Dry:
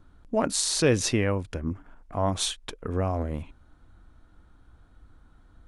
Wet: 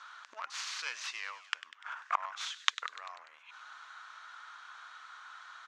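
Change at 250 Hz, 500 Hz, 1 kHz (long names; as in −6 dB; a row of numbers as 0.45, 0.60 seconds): below −40 dB, −30.0 dB, −4.5 dB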